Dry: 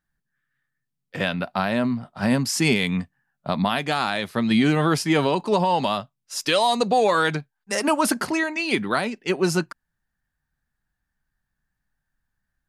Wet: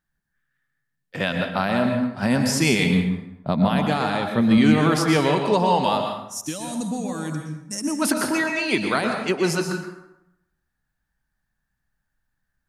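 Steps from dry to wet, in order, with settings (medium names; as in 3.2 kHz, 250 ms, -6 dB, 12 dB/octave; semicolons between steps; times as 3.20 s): 2.84–4.58 s: tilt shelf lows +5 dB, about 710 Hz; 6.18–8.02 s: time-frequency box 330–5300 Hz -17 dB; reverberation RT60 0.85 s, pre-delay 108 ms, DRR 3.5 dB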